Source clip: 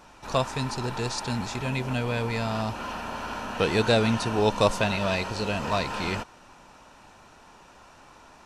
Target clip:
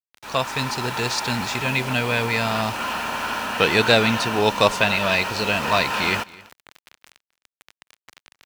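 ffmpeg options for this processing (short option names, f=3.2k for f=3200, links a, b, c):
-filter_complex "[0:a]acrusher=bits=6:mix=0:aa=0.000001,highpass=f=100:p=1,asplit=2[a][b];[b]aecho=0:1:261:0.075[c];[a][c]amix=inputs=2:normalize=0,dynaudnorm=f=300:g=3:m=6.5dB,equalizer=f=2.3k:t=o:w=2.3:g=8,volume=-3dB"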